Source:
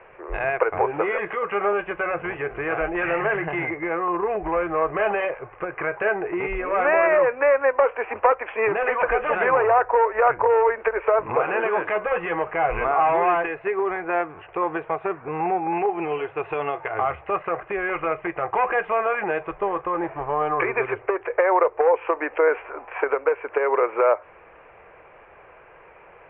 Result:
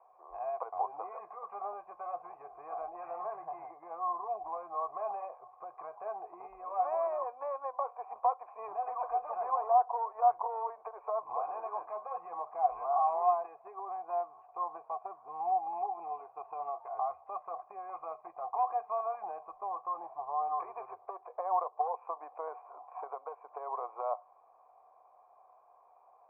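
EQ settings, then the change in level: vocal tract filter a; low shelf 420 Hz -9 dB; high shelf 2300 Hz -8.5 dB; 0.0 dB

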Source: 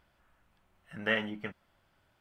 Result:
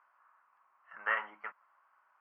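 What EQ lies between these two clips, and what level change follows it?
running mean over 12 samples; resonant high-pass 1100 Hz, resonance Q 5; air absorption 120 m; 0.0 dB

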